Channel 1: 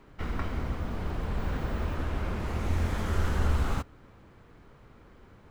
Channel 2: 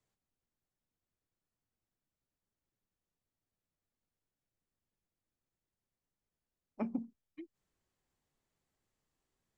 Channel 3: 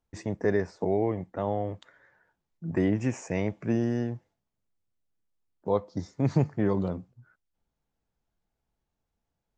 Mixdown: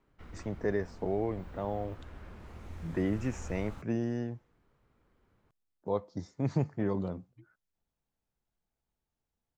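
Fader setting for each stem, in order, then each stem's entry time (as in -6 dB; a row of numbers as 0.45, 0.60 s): -16.5, -14.0, -5.5 dB; 0.00, 0.00, 0.20 s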